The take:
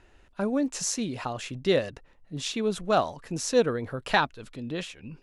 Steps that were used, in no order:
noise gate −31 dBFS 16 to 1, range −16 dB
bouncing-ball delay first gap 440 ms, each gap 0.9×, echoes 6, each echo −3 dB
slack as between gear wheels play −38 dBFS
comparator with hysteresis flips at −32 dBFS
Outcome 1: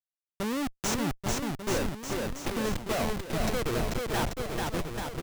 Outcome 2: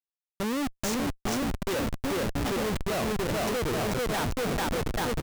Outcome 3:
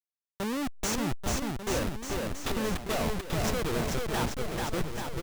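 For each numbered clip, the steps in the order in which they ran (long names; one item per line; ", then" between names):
slack as between gear wheels, then noise gate, then comparator with hysteresis, then bouncing-ball delay
noise gate, then bouncing-ball delay, then slack as between gear wheels, then comparator with hysteresis
noise gate, then comparator with hysteresis, then slack as between gear wheels, then bouncing-ball delay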